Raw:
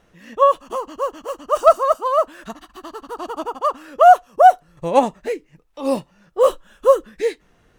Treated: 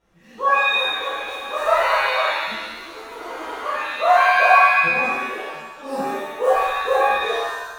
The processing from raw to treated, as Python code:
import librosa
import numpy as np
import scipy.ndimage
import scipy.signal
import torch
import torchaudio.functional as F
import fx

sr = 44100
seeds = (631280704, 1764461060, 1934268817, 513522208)

y = fx.level_steps(x, sr, step_db=20, at=(4.88, 5.33))
y = fx.rev_shimmer(y, sr, seeds[0], rt60_s=1.0, semitones=7, shimmer_db=-2, drr_db=-11.0)
y = F.gain(torch.from_numpy(y), -16.0).numpy()